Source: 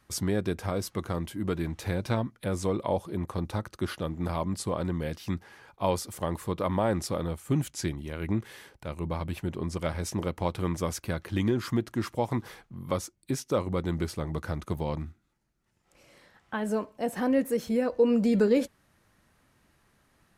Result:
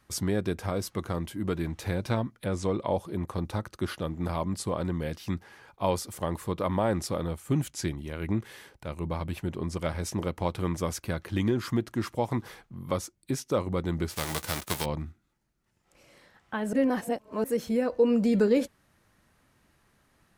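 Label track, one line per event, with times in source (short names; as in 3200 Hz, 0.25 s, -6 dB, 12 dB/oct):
2.460000	2.940000	LPF 7700 Hz
14.100000	14.840000	spectral whitening exponent 0.3
16.730000	17.440000	reverse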